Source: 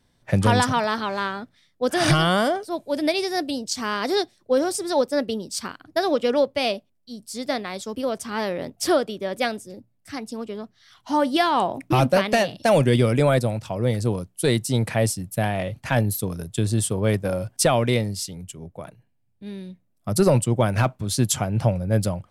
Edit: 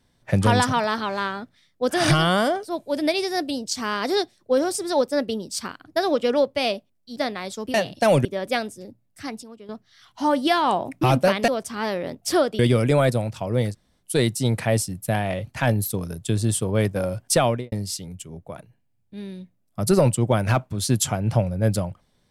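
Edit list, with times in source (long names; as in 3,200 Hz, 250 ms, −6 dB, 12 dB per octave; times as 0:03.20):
0:07.16–0:07.45: remove
0:08.03–0:09.14: swap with 0:12.37–0:12.88
0:10.32–0:10.58: clip gain −11 dB
0:14.01–0:14.30: fill with room tone, crossfade 0.06 s
0:17.74–0:18.01: fade out and dull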